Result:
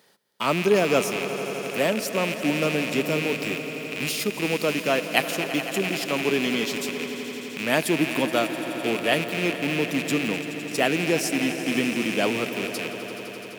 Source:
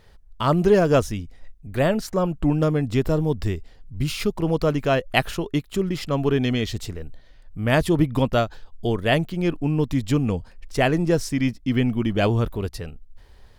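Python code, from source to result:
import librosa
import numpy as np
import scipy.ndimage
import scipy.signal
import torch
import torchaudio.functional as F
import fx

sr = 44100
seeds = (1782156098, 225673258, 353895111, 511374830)

p1 = fx.rattle_buzz(x, sr, strikes_db=-33.0, level_db=-17.0)
p2 = scipy.signal.sosfilt(scipy.signal.butter(4, 190.0, 'highpass', fs=sr, output='sos'), p1)
p3 = fx.high_shelf(p2, sr, hz=5700.0, db=12.0)
p4 = p3 + fx.echo_swell(p3, sr, ms=85, loudest=5, wet_db=-15, dry=0)
y = p4 * 10.0 ** (-3.0 / 20.0)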